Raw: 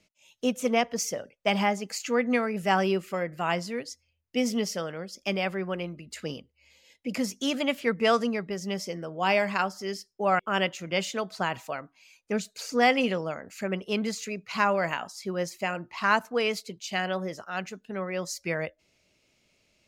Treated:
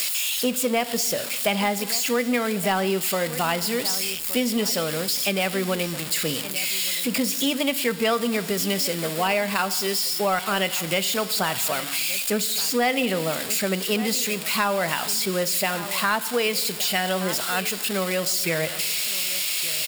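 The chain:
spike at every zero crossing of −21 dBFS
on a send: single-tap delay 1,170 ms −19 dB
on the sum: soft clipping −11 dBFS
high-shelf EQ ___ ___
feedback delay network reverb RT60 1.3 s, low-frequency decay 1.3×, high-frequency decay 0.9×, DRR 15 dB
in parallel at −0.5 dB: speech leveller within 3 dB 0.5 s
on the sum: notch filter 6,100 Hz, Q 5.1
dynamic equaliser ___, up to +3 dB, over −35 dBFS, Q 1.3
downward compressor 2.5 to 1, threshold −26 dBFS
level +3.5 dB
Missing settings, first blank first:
9,200 Hz, −5 dB, 3,400 Hz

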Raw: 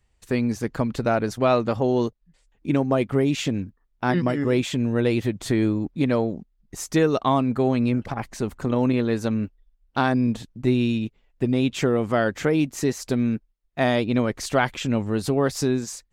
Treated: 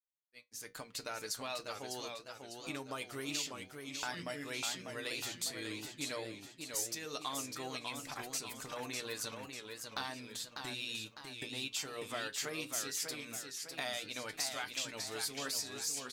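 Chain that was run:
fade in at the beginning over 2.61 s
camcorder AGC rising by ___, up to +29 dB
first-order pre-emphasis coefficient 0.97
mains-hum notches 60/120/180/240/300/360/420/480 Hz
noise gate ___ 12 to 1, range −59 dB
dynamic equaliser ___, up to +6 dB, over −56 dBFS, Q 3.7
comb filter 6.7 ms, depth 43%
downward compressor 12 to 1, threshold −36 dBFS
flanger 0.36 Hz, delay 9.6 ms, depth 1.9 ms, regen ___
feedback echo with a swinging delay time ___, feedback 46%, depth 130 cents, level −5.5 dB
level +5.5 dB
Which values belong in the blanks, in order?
13 dB per second, −54 dBFS, 4,600 Hz, +67%, 599 ms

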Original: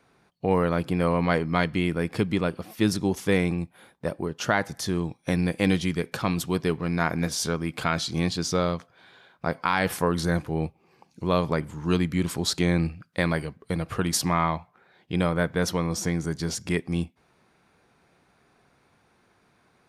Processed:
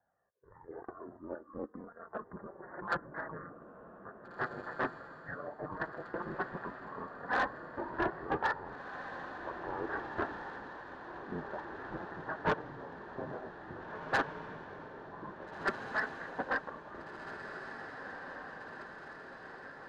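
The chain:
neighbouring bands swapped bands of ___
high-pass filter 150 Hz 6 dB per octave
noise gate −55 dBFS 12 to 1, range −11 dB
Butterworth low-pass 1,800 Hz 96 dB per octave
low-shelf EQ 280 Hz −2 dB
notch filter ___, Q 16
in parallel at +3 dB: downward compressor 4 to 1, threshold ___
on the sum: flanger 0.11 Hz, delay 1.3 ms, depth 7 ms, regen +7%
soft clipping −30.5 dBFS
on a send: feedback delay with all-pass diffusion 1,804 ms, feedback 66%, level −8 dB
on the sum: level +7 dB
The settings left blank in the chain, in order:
4,000 Hz, 1,300 Hz, −48 dBFS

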